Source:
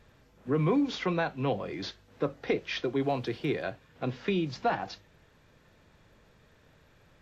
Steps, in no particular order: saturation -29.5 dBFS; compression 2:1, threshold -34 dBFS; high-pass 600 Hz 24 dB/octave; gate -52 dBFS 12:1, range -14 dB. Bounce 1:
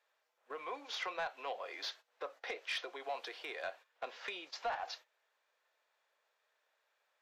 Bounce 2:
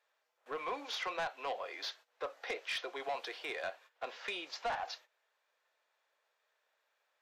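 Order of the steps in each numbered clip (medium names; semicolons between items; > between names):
compression > high-pass > gate > saturation; gate > high-pass > saturation > compression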